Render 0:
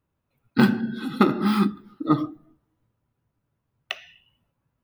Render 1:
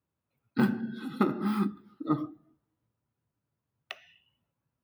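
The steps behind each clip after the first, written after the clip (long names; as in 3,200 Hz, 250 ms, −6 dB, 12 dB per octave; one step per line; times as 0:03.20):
high-pass filter 75 Hz
dynamic equaliser 4,000 Hz, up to −7 dB, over −43 dBFS, Q 0.72
level −7.5 dB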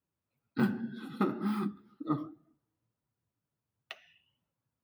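flanger 2 Hz, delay 3.5 ms, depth 8.4 ms, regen −40%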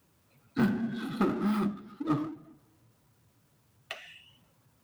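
power curve on the samples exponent 0.7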